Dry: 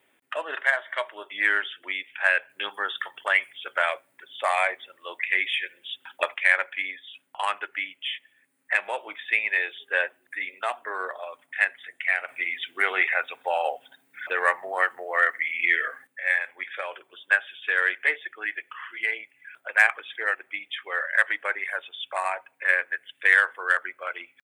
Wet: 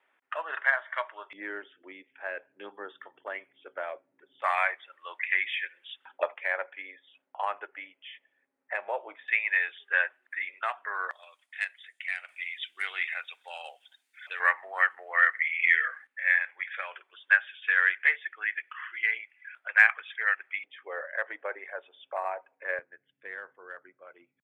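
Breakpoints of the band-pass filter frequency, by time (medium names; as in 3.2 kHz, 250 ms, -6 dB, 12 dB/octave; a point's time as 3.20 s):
band-pass filter, Q 1.2
1.2 kHz
from 1.33 s 300 Hz
from 4.42 s 1.4 kHz
from 6.05 s 610 Hz
from 9.28 s 1.5 kHz
from 11.11 s 4.9 kHz
from 14.40 s 1.8 kHz
from 20.64 s 510 Hz
from 22.79 s 150 Hz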